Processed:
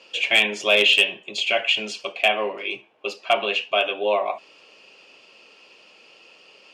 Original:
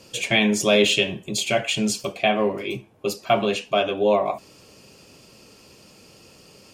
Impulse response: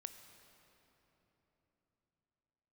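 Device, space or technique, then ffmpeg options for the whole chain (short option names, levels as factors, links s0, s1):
megaphone: -af "highpass=510,lowpass=3800,equalizer=f=2800:t=o:w=0.54:g=9,asoftclip=type=hard:threshold=0.422"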